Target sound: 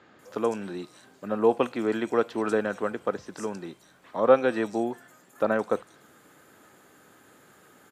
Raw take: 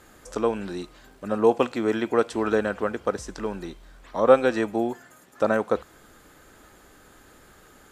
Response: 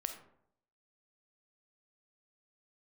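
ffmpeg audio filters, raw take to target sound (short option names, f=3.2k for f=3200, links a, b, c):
-filter_complex "[0:a]highpass=f=110:w=0.5412,highpass=f=110:w=1.3066,acrossover=split=4800[a][b];[b]adelay=190[c];[a][c]amix=inputs=2:normalize=0,volume=-2.5dB"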